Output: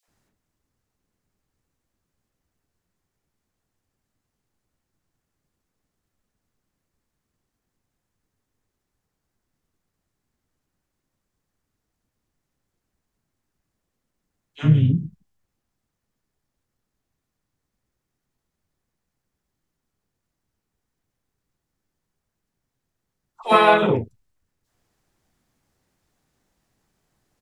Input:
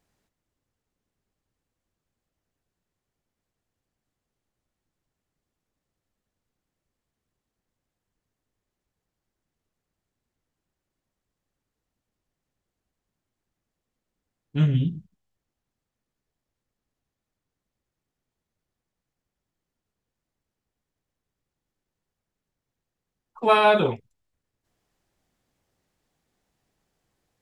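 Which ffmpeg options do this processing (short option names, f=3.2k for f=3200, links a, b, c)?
-filter_complex "[0:a]acrossover=split=570|3200[a][b][c];[b]adelay=30[d];[a]adelay=80[e];[e][d][c]amix=inputs=3:normalize=0,asplit=2[f][g];[g]asetrate=35002,aresample=44100,atempo=1.25992,volume=-8dB[h];[f][h]amix=inputs=2:normalize=0,volume=4.5dB"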